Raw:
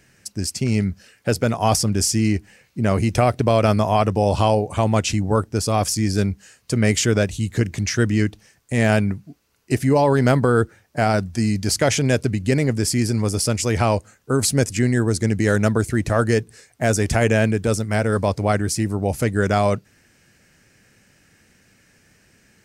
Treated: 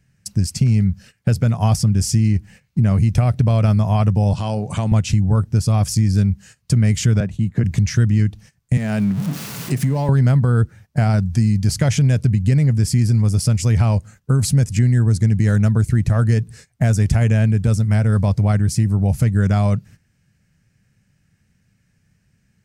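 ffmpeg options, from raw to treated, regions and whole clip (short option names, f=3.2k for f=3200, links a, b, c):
-filter_complex "[0:a]asettb=1/sr,asplit=3[a][b][c];[a]atrim=end=4.334[d];[b]atrim=start=4.33:end=4.92,asetpts=PTS-STARTPTS,afade=t=in:d=0.004:c=qsin,afade=t=out:st=0.586:d=0.004:c=qsin,highshelf=f=5k:g=8,acompressor=threshold=-26dB:ratio=2:attack=3.2:release=140:knee=1:detection=peak,highpass=150,lowpass=7.8k[e];[c]atrim=start=4.916[f];[d][e]acrossfade=d=0.004:c1=hsin:c2=qsin[g];[g][f]acrossfade=d=0.004:c1=qsin:c2=hsin,asettb=1/sr,asplit=3[h][i][j];[h]atrim=end=7.204[k];[i]atrim=start=7.2:end=7.64,asetpts=PTS-STARTPTS,afade=t=in:d=0.004:c=qsin,afade=t=out:st=0.436:d=0.004:c=qsin,agate=range=-33dB:threshold=-30dB:ratio=3:release=100:detection=peak,acrossover=split=160 2300:gain=0.224 1 0.2[l][m][n];[l][m][n]amix=inputs=3:normalize=0[o];[j]atrim=start=7.636[p];[k][o]acrossfade=d=0.004:c1=hsin:c2=qsin[q];[q][p]acrossfade=d=0.004:c1=qsin:c2=hsin,asettb=1/sr,asplit=3[r][s][t];[r]atrim=end=8.774[u];[s]atrim=start=8.77:end=10.09,asetpts=PTS-STARTPTS,afade=t=in:d=0.004:c=qsin,afade=t=out:st=1.316:d=0.004:c=qsin,aeval=exprs='val(0)+0.5*0.0398*sgn(val(0))':c=same,highpass=f=140:w=0.5412,highpass=f=140:w=1.3066,acompressor=threshold=-26dB:ratio=2:attack=3.2:release=140:knee=1:detection=peak[v];[t]atrim=start=10.086[w];[u][v]acrossfade=d=0.004:c1=hsin:c2=qsin[x];[x][w]acrossfade=d=0.004:c1=qsin:c2=hsin,agate=range=-15dB:threshold=-44dB:ratio=16:detection=peak,lowshelf=f=230:t=q:w=1.5:g=11.5,acompressor=threshold=-17dB:ratio=3,volume=2dB"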